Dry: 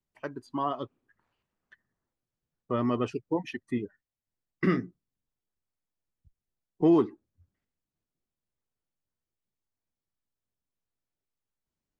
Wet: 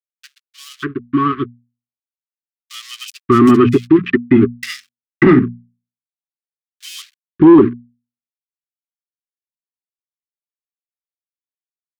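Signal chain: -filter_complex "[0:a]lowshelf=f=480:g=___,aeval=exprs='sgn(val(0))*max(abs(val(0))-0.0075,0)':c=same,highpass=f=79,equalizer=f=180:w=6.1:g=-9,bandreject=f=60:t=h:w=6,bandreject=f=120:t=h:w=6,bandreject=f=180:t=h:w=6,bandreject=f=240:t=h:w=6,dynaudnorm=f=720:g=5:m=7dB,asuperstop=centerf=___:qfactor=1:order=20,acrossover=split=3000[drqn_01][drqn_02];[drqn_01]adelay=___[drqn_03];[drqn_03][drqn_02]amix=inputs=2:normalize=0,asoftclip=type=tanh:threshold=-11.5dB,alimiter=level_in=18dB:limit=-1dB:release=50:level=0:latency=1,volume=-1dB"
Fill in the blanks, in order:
5, 670, 590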